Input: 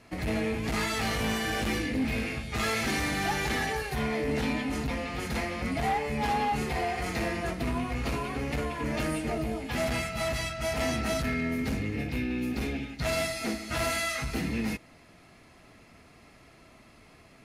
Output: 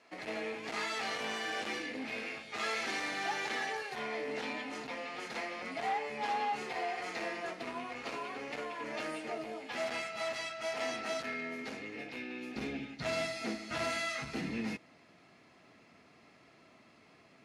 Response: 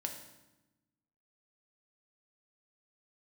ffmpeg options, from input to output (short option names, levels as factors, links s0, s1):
-af "asetnsamples=n=441:p=0,asendcmd='12.56 highpass f 160',highpass=410,lowpass=6400,volume=0.562"